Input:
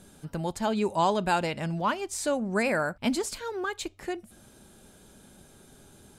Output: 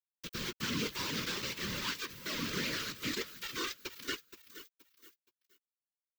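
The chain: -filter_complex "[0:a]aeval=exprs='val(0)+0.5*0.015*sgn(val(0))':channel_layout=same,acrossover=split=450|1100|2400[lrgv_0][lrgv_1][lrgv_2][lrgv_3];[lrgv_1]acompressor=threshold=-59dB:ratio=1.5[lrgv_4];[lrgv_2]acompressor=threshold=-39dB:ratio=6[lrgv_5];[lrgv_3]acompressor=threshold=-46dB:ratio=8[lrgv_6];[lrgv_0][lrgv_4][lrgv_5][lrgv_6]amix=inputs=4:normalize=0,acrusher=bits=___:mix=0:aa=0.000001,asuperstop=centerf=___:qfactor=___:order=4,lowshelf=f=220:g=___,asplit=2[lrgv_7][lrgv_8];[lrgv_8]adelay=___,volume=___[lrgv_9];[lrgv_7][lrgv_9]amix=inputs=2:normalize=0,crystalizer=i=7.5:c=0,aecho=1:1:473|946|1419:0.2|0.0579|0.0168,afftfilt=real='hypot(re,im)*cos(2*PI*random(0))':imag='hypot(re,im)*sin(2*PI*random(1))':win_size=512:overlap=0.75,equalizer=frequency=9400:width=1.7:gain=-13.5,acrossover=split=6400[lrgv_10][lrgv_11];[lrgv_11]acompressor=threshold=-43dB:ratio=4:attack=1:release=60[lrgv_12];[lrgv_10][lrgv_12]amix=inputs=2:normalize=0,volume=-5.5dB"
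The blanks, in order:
4, 720, 1.3, -2, 14, -9.5dB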